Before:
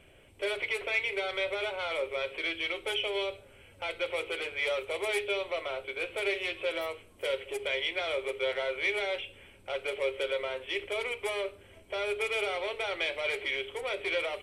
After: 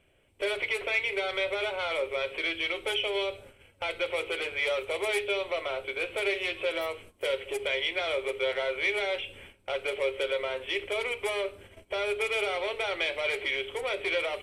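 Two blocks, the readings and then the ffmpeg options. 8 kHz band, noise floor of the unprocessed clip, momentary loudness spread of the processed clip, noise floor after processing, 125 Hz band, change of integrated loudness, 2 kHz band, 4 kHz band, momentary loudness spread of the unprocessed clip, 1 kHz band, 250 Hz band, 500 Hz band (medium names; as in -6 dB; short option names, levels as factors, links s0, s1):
+2.0 dB, -57 dBFS, 6 LU, -62 dBFS, +2.5 dB, +2.0 dB, +2.0 dB, +2.5 dB, 6 LU, +2.5 dB, +2.5 dB, +2.0 dB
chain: -filter_complex "[0:a]agate=range=0.2:threshold=0.00224:ratio=16:detection=peak,asplit=2[s0][s1];[s1]acompressor=threshold=0.01:ratio=6,volume=0.944[s2];[s0][s2]amix=inputs=2:normalize=0"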